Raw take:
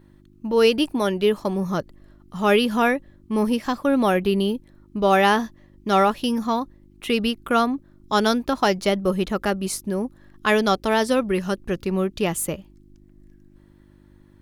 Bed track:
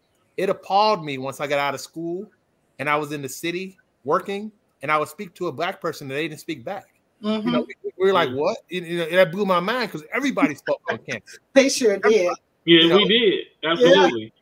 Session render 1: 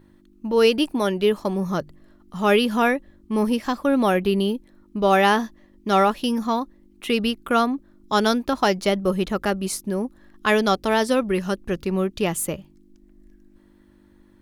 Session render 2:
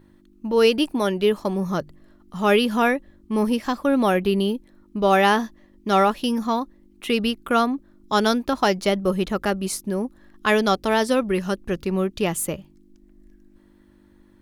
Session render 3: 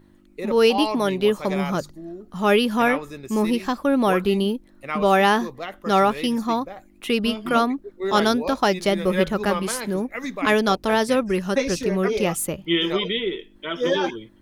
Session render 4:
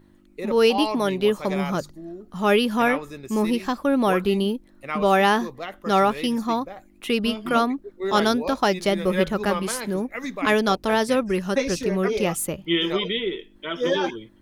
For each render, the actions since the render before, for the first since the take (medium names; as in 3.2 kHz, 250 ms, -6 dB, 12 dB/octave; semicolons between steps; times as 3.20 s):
de-hum 50 Hz, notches 3
no audible change
add bed track -8 dB
trim -1 dB